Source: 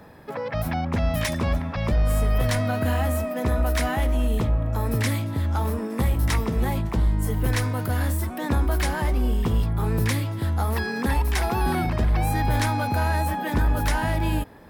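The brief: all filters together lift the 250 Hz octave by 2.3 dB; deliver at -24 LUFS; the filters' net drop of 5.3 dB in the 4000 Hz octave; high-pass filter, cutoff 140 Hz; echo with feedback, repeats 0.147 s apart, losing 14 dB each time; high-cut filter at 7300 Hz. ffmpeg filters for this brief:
-af "highpass=140,lowpass=7.3k,equalizer=f=250:t=o:g=3.5,equalizer=f=4k:t=o:g=-6.5,aecho=1:1:147|294:0.2|0.0399,volume=3dB"

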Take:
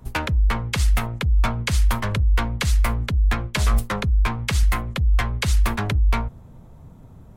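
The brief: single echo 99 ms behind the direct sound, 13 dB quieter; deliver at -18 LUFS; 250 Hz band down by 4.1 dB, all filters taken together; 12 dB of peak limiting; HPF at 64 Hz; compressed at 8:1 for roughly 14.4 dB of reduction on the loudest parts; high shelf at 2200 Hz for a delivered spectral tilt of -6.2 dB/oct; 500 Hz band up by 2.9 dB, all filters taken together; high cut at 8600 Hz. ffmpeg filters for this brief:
-af "highpass=64,lowpass=8.6k,equalizer=f=250:t=o:g=-6.5,equalizer=f=500:t=o:g=5.5,highshelf=f=2.2k:g=-6,acompressor=threshold=-35dB:ratio=8,alimiter=level_in=9.5dB:limit=-24dB:level=0:latency=1,volume=-9.5dB,aecho=1:1:99:0.224,volume=24dB"

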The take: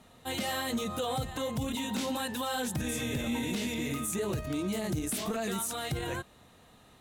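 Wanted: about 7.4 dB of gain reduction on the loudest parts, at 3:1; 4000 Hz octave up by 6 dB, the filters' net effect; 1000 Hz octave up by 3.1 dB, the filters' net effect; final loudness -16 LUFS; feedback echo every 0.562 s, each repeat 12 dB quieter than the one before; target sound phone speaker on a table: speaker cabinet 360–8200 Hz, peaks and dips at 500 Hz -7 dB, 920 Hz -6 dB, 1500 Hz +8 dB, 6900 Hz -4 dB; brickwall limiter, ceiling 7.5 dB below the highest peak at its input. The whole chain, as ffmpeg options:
-af "equalizer=f=1k:t=o:g=5.5,equalizer=f=4k:t=o:g=7,acompressor=threshold=-37dB:ratio=3,alimiter=level_in=9.5dB:limit=-24dB:level=0:latency=1,volume=-9.5dB,highpass=f=360:w=0.5412,highpass=f=360:w=1.3066,equalizer=f=500:t=q:w=4:g=-7,equalizer=f=920:t=q:w=4:g=-6,equalizer=f=1.5k:t=q:w=4:g=8,equalizer=f=6.9k:t=q:w=4:g=-4,lowpass=f=8.2k:w=0.5412,lowpass=f=8.2k:w=1.3066,aecho=1:1:562|1124|1686:0.251|0.0628|0.0157,volume=27.5dB"

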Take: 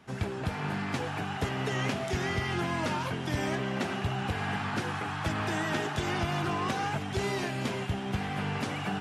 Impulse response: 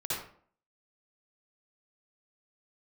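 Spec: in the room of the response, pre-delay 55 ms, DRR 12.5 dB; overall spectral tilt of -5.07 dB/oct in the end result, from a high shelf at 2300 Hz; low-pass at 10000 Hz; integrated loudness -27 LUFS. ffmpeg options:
-filter_complex "[0:a]lowpass=10k,highshelf=f=2.3k:g=-4.5,asplit=2[a][b];[1:a]atrim=start_sample=2205,adelay=55[c];[b][c]afir=irnorm=-1:irlink=0,volume=-17.5dB[d];[a][d]amix=inputs=2:normalize=0,volume=5dB"

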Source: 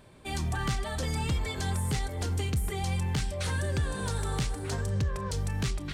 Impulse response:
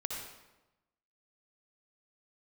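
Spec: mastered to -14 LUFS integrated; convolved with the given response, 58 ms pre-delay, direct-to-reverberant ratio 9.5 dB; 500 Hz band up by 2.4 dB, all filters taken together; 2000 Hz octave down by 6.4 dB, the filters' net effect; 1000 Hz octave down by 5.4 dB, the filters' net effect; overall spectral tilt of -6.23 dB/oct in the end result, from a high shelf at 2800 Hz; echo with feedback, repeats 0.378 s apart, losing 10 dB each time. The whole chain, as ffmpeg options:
-filter_complex "[0:a]equalizer=f=500:t=o:g=5,equalizer=f=1k:t=o:g=-7.5,equalizer=f=2k:t=o:g=-4,highshelf=f=2.8k:g=-5,aecho=1:1:378|756|1134|1512:0.316|0.101|0.0324|0.0104,asplit=2[a][b];[1:a]atrim=start_sample=2205,adelay=58[c];[b][c]afir=irnorm=-1:irlink=0,volume=-11.5dB[d];[a][d]amix=inputs=2:normalize=0,volume=16.5dB"

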